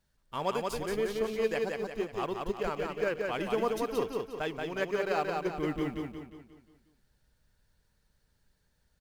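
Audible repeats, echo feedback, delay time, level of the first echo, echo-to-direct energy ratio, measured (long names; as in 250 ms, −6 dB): 5, 46%, 178 ms, −3.5 dB, −2.5 dB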